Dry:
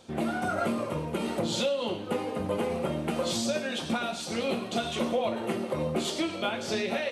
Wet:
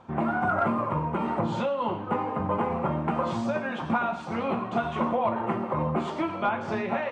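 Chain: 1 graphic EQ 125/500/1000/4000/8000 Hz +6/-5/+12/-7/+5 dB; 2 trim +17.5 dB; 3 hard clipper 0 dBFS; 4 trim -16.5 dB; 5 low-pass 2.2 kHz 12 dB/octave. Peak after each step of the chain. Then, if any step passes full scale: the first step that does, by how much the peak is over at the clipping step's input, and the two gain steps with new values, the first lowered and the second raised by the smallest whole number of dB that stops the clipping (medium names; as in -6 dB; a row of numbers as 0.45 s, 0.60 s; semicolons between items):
-13.5 dBFS, +4.0 dBFS, 0.0 dBFS, -16.5 dBFS, -16.0 dBFS; step 2, 4.0 dB; step 2 +13.5 dB, step 4 -12.5 dB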